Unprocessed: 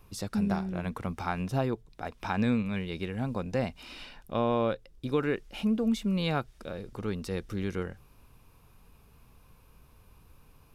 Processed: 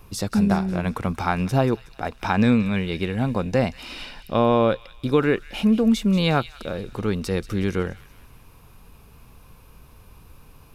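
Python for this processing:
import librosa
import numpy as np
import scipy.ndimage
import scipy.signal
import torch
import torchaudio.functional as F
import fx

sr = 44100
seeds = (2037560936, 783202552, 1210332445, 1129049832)

y = fx.echo_wet_highpass(x, sr, ms=184, feedback_pct=49, hz=2300.0, wet_db=-13.0)
y = y * 10.0 ** (9.0 / 20.0)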